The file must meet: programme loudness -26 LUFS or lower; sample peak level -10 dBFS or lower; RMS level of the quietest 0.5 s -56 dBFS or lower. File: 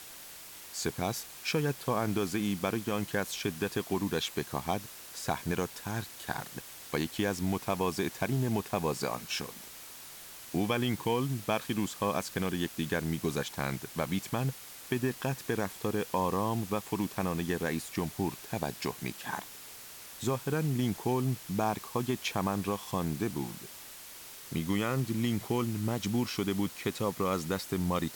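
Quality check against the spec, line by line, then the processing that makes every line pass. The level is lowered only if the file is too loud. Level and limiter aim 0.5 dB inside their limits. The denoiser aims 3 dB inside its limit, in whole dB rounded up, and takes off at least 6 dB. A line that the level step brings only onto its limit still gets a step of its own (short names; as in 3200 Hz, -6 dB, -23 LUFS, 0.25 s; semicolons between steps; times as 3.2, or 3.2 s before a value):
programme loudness -33.0 LUFS: OK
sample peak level -17.0 dBFS: OK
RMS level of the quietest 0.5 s -48 dBFS: fail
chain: denoiser 11 dB, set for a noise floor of -48 dBFS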